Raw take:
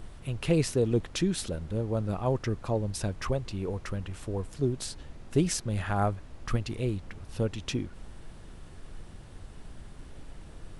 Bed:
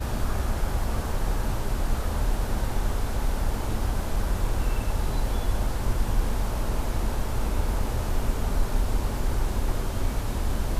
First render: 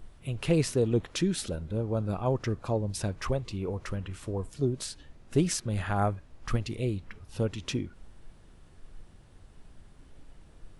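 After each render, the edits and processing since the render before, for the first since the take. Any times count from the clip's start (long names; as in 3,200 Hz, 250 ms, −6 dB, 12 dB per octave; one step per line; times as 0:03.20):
noise reduction from a noise print 8 dB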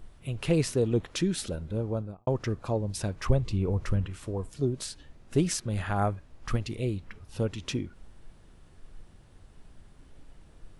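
0:01.85–0:02.27: fade out and dull
0:03.29–0:04.07: low-shelf EQ 200 Hz +10.5 dB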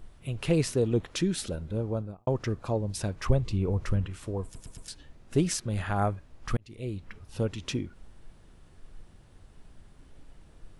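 0:04.44: stutter in place 0.11 s, 4 plays
0:06.57–0:07.10: fade in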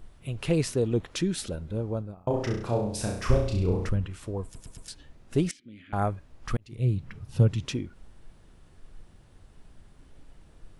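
0:02.14–0:03.89: flutter between parallel walls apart 5.7 metres, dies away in 0.6 s
0:05.51–0:05.93: formant filter i
0:06.72–0:07.66: parametric band 130 Hz +14 dB 1 octave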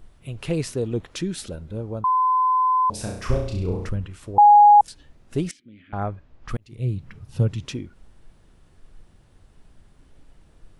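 0:02.04–0:02.90: beep over 1,020 Hz −16 dBFS
0:04.38–0:04.81: beep over 828 Hz −7.5 dBFS
0:05.61–0:06.49: high-frequency loss of the air 130 metres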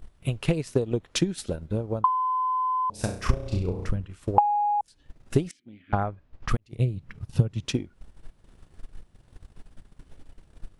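downward compressor 5 to 1, threshold −25 dBFS, peak gain reduction 13.5 dB
transient designer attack +9 dB, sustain −8 dB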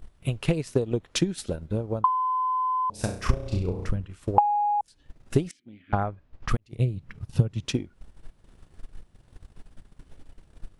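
no processing that can be heard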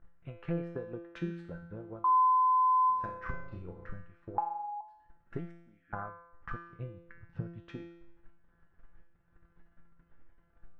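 low-pass with resonance 1,600 Hz, resonance Q 3
tuned comb filter 170 Hz, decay 0.8 s, harmonics all, mix 90%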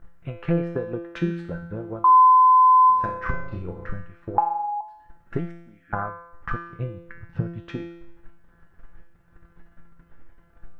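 level +11.5 dB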